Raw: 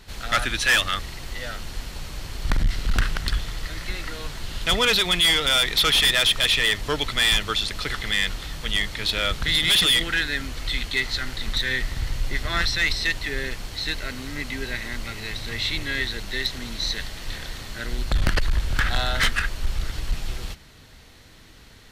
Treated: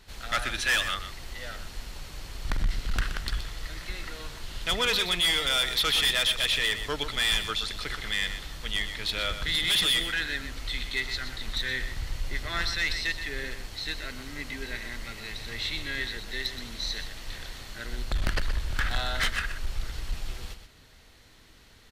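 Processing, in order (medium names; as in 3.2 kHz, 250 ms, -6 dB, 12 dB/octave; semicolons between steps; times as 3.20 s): peaking EQ 140 Hz -3 dB 2.2 oct; on a send: delay 124 ms -10 dB; on the sum: trim -6 dB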